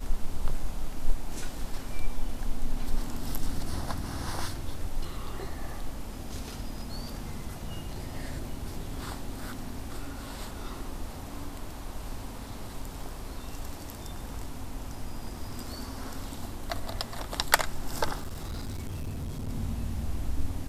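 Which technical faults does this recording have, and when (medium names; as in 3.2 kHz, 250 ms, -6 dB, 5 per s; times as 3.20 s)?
18.16–19.50 s: clipped -31.5 dBFS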